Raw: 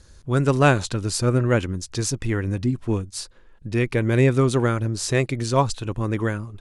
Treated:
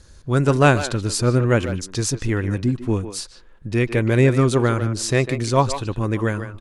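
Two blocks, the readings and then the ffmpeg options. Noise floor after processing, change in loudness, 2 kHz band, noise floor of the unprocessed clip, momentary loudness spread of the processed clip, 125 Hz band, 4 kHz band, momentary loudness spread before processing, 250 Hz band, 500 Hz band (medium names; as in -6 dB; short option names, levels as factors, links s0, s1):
-47 dBFS, +2.0 dB, +2.5 dB, -50 dBFS, 9 LU, +2.0 dB, +2.0 dB, 9 LU, +2.0 dB, +2.5 dB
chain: -filter_complex "[0:a]asplit=2[s0][s1];[s1]adelay=150,highpass=300,lowpass=3400,asoftclip=type=hard:threshold=0.237,volume=0.355[s2];[s0][s2]amix=inputs=2:normalize=0,volume=1.26"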